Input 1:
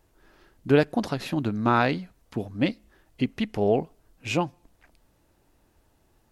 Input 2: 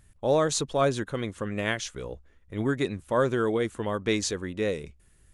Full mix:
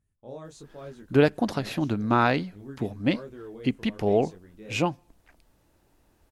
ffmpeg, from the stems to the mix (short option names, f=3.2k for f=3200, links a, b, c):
-filter_complex "[0:a]adelay=450,volume=0dB[a];[1:a]equalizer=f=190:w=0.33:g=8.5,flanger=delay=19.5:depth=4.9:speed=1.2,volume=-20dB[b];[a][b]amix=inputs=2:normalize=0"